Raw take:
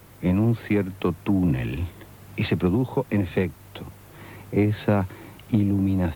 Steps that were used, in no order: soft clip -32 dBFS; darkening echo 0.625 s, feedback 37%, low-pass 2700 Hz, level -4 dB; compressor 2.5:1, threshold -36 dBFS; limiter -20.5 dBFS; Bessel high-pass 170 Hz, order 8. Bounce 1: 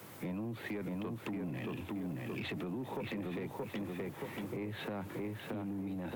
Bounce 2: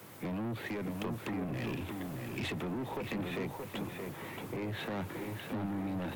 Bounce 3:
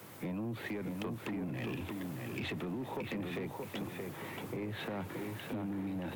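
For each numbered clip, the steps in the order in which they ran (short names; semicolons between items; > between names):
darkening echo > limiter > compressor > Bessel high-pass > soft clip; Bessel high-pass > limiter > soft clip > compressor > darkening echo; limiter > Bessel high-pass > compressor > darkening echo > soft clip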